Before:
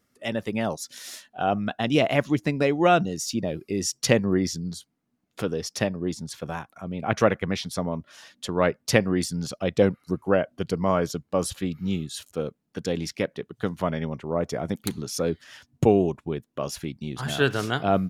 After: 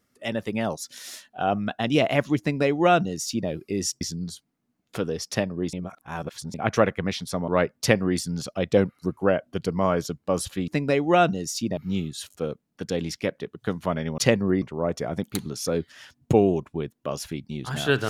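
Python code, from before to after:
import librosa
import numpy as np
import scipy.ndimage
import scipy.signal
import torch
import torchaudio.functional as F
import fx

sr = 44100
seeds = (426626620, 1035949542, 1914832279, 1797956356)

y = fx.edit(x, sr, fx.duplicate(start_s=2.4, length_s=1.09, to_s=11.73),
    fx.move(start_s=4.01, length_s=0.44, to_s=14.14),
    fx.reverse_span(start_s=6.17, length_s=0.81),
    fx.cut(start_s=7.92, length_s=0.61), tone=tone)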